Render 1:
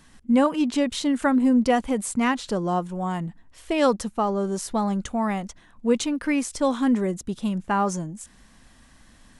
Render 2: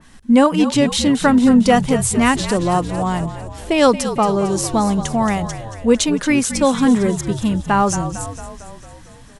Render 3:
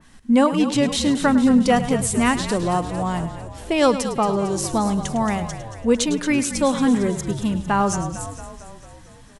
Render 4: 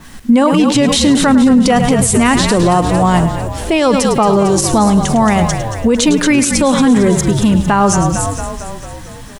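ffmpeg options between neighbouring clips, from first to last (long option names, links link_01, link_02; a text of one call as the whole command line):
ffmpeg -i in.wav -filter_complex "[0:a]asplit=2[link_01][link_02];[link_02]asplit=8[link_03][link_04][link_05][link_06][link_07][link_08][link_09][link_10];[link_03]adelay=226,afreqshift=-55,volume=-11.5dB[link_11];[link_04]adelay=452,afreqshift=-110,volume=-15.5dB[link_12];[link_05]adelay=678,afreqshift=-165,volume=-19.5dB[link_13];[link_06]adelay=904,afreqshift=-220,volume=-23.5dB[link_14];[link_07]adelay=1130,afreqshift=-275,volume=-27.6dB[link_15];[link_08]adelay=1356,afreqshift=-330,volume=-31.6dB[link_16];[link_09]adelay=1582,afreqshift=-385,volume=-35.6dB[link_17];[link_10]adelay=1808,afreqshift=-440,volume=-39.6dB[link_18];[link_11][link_12][link_13][link_14][link_15][link_16][link_17][link_18]amix=inputs=8:normalize=0[link_19];[link_01][link_19]amix=inputs=2:normalize=0,adynamicequalizer=threshold=0.0126:dfrequency=2700:dqfactor=0.7:tfrequency=2700:tqfactor=0.7:attack=5:release=100:ratio=0.375:range=2:mode=boostabove:tftype=highshelf,volume=7dB" out.wav
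ffmpeg -i in.wav -af "aecho=1:1:105:0.211,volume=-4dB" out.wav
ffmpeg -i in.wav -af "acrusher=bits=9:mix=0:aa=0.000001,alimiter=level_in=16.5dB:limit=-1dB:release=50:level=0:latency=1,volume=-2dB" out.wav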